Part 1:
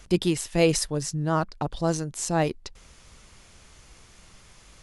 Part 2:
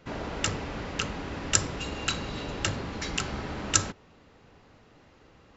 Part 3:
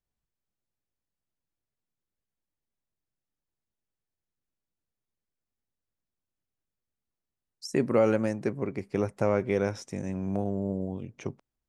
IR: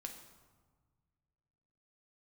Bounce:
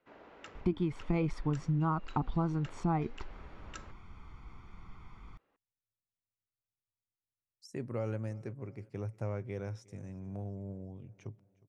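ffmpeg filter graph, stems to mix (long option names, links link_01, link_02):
-filter_complex "[0:a]lowpass=1500,aecho=1:1:0.9:0.88,flanger=delay=1.5:depth=3.2:regen=86:speed=1.4:shape=triangular,adelay=550,volume=3dB[link_01];[1:a]acrossover=split=260 3100:gain=0.178 1 0.178[link_02][link_03][link_04];[link_02][link_03][link_04]amix=inputs=3:normalize=0,volume=-18dB[link_05];[2:a]equalizer=frequency=110:width=2.8:gain=14.5,volume=-15dB,asplit=2[link_06][link_07];[link_07]volume=-23.5dB,aecho=0:1:361|722|1083|1444|1805|2166|2527:1|0.51|0.26|0.133|0.0677|0.0345|0.0176[link_08];[link_01][link_05][link_06][link_08]amix=inputs=4:normalize=0,acompressor=threshold=-27dB:ratio=8"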